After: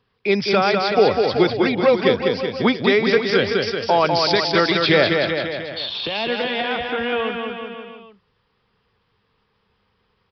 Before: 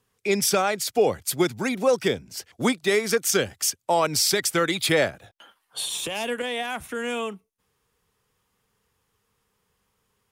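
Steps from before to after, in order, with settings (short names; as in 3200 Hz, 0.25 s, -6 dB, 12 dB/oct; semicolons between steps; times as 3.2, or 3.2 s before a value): on a send: bouncing-ball echo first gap 0.2 s, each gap 0.9×, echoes 5; on the sum: downsampling 11025 Hz; gain +4.5 dB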